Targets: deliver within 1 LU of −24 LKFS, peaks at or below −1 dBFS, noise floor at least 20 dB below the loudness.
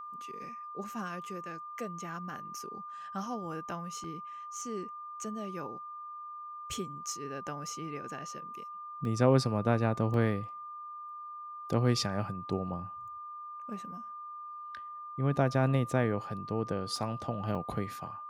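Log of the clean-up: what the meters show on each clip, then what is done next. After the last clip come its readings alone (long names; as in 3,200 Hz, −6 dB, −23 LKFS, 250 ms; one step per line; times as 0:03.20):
number of dropouts 5; longest dropout 1.4 ms; interfering tone 1,200 Hz; level of the tone −41 dBFS; integrated loudness −35.0 LKFS; sample peak −12.0 dBFS; target loudness −24.0 LKFS
→ repair the gap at 0:04.04/0:09.05/0:10.14/0:16.96/0:17.55, 1.4 ms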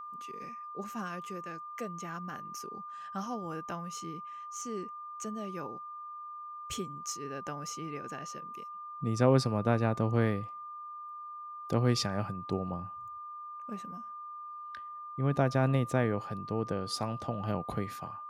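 number of dropouts 0; interfering tone 1,200 Hz; level of the tone −41 dBFS
→ notch filter 1,200 Hz, Q 30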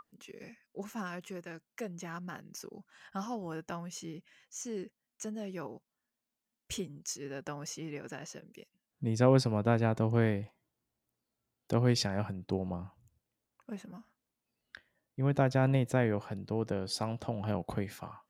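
interfering tone none found; integrated loudness −34.0 LKFS; sample peak −12.0 dBFS; target loudness −24.0 LKFS
→ level +10 dB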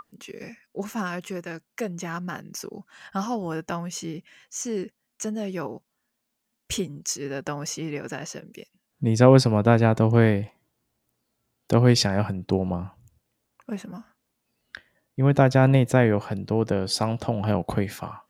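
integrated loudness −24.0 LKFS; sample peak −2.0 dBFS; background noise floor −79 dBFS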